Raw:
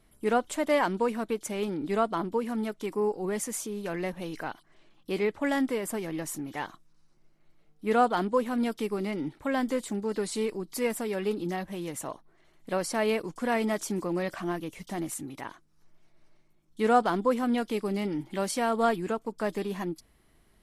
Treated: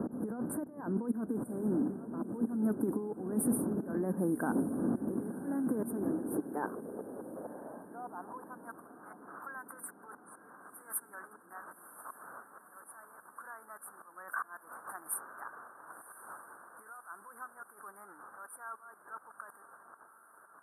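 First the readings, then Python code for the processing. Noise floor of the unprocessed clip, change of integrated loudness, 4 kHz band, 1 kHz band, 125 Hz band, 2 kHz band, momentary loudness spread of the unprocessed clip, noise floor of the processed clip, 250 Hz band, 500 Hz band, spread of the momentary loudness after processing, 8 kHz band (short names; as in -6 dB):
-64 dBFS, -7.0 dB, under -40 dB, -13.5 dB, -5.0 dB, -10.5 dB, 11 LU, -60 dBFS, -4.5 dB, -12.5 dB, 20 LU, -6.0 dB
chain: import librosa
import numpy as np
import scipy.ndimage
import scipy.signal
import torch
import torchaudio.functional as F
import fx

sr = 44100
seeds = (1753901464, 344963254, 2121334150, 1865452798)

p1 = fx.dmg_wind(x, sr, seeds[0], corner_hz=370.0, level_db=-30.0)
p2 = fx.over_compress(p1, sr, threshold_db=-34.0, ratio=-1.0)
p3 = fx.low_shelf(p2, sr, hz=270.0, db=9.0)
p4 = fx.auto_swell(p3, sr, attack_ms=202.0)
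p5 = fx.high_shelf(p4, sr, hz=2400.0, db=7.5)
p6 = fx.filter_sweep_highpass(p5, sr, from_hz=240.0, to_hz=1300.0, start_s=5.86, end_s=9.0, q=2.8)
p7 = scipy.signal.sosfilt(scipy.signal.cheby1(5, 1.0, [1600.0, 9100.0], 'bandstop', fs=sr, output='sos'), p6)
p8 = p7 + fx.echo_diffused(p7, sr, ms=1051, feedback_pct=55, wet_db=-14.5, dry=0)
y = F.gain(torch.from_numpy(p8), -7.5).numpy()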